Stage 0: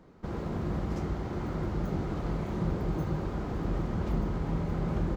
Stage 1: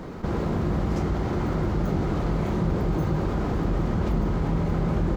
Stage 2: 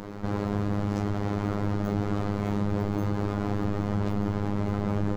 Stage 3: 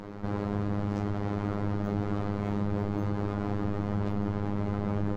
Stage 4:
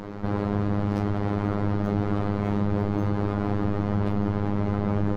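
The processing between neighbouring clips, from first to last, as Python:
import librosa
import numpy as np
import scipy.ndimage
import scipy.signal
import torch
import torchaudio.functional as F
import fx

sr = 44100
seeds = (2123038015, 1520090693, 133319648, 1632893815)

y1 = fx.env_flatten(x, sr, amount_pct=50)
y1 = F.gain(torch.from_numpy(y1), 4.5).numpy()
y2 = fx.robotise(y1, sr, hz=102.0)
y3 = fx.lowpass(y2, sr, hz=3800.0, slope=6)
y3 = F.gain(torch.from_numpy(y3), -2.5).numpy()
y4 = fx.tracing_dist(y3, sr, depth_ms=0.027)
y4 = F.gain(torch.from_numpy(y4), 5.0).numpy()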